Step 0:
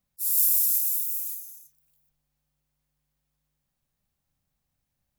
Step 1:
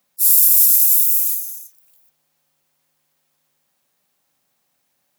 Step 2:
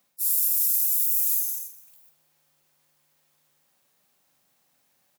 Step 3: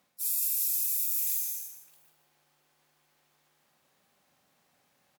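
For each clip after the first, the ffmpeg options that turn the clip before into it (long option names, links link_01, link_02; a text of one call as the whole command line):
ffmpeg -i in.wav -af "highpass=340,alimiter=level_in=15dB:limit=-1dB:release=50:level=0:latency=1,volume=-1dB" out.wav
ffmpeg -i in.wav -af "areverse,acompressor=threshold=-21dB:ratio=6,areverse,aecho=1:1:46|224:0.355|0.112" out.wav
ffmpeg -i in.wav -filter_complex "[0:a]aemphasis=mode=reproduction:type=cd,asplit=2[link_01][link_02];[link_02]adelay=157.4,volume=-7dB,highshelf=frequency=4000:gain=-3.54[link_03];[link_01][link_03]amix=inputs=2:normalize=0,volume=2.5dB" out.wav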